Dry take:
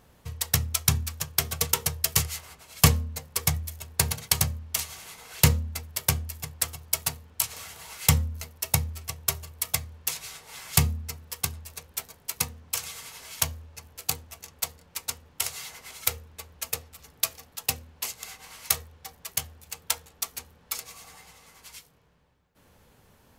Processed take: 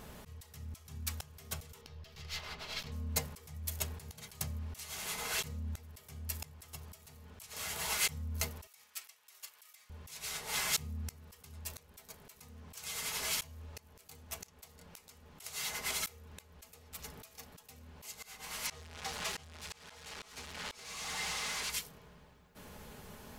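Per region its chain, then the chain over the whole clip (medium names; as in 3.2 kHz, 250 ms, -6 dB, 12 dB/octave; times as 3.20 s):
1.81–2.92 s: partial rectifier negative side -3 dB + resonant high shelf 6.3 kHz -13.5 dB, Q 1.5
8.67–9.90 s: high-pass 1.4 kHz + compression, threshold -27 dBFS
18.67–21.70 s: zero-crossing glitches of -22 dBFS + tape spacing loss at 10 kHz 25 dB
whole clip: comb 4.8 ms, depth 36%; compression 3:1, threshold -29 dBFS; slow attack 517 ms; trim +7.5 dB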